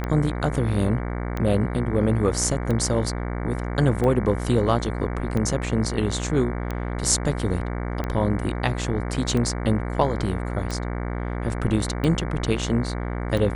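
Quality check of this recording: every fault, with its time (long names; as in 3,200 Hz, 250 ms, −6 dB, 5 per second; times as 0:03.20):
mains buzz 60 Hz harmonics 38 −28 dBFS
scratch tick 45 rpm −15 dBFS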